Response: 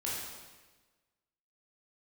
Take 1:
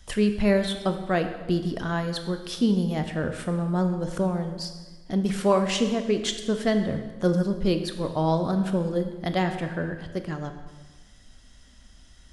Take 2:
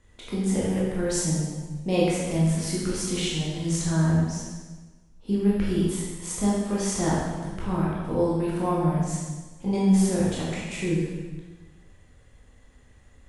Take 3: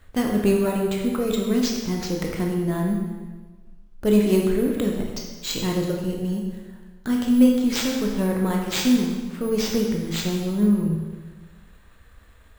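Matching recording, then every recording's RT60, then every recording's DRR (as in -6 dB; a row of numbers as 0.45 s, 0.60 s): 2; 1.3 s, 1.3 s, 1.3 s; 6.5 dB, -6.5 dB, 0.0 dB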